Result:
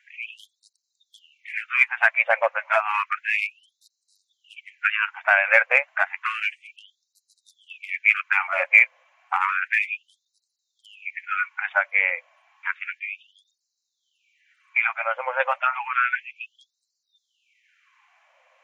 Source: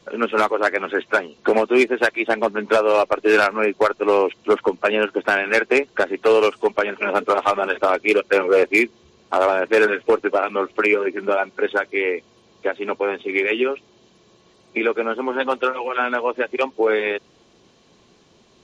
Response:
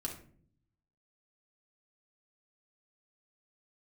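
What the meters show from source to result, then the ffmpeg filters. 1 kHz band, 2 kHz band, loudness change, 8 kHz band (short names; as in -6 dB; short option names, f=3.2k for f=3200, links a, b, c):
-5.0 dB, +1.0 dB, -2.0 dB, n/a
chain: -af "highshelf=f=3k:t=q:w=3:g=-10,afftfilt=real='re*gte(b*sr/1024,490*pow(3900/490,0.5+0.5*sin(2*PI*0.31*pts/sr)))':imag='im*gte(b*sr/1024,490*pow(3900/490,0.5+0.5*sin(2*PI*0.31*pts/sr)))':win_size=1024:overlap=0.75,volume=-1.5dB"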